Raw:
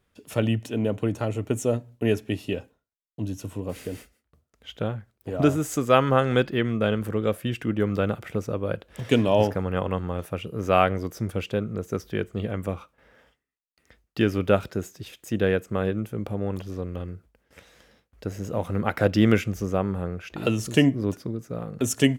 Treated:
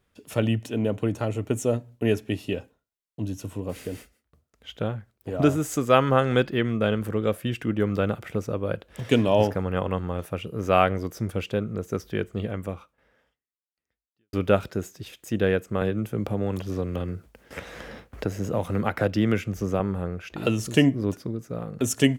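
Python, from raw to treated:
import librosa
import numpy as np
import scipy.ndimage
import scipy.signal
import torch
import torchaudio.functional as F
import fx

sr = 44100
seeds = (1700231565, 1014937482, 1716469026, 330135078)

y = fx.band_squash(x, sr, depth_pct=70, at=(15.81, 19.8))
y = fx.edit(y, sr, fx.fade_out_span(start_s=12.38, length_s=1.95, curve='qua'), tone=tone)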